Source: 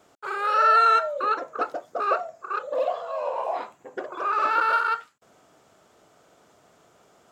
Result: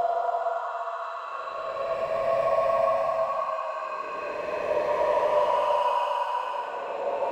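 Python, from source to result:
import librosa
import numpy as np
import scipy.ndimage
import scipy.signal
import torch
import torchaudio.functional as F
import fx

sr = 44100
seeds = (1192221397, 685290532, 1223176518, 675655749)

y = fx.filter_lfo_highpass(x, sr, shape='saw_up', hz=9.6, low_hz=460.0, high_hz=2500.0, q=3.2)
y = np.clip(y, -10.0 ** (-18.0 / 20.0), 10.0 ** (-18.0 / 20.0))
y = fx.paulstretch(y, sr, seeds[0], factor=25.0, window_s=0.1, from_s=3.04)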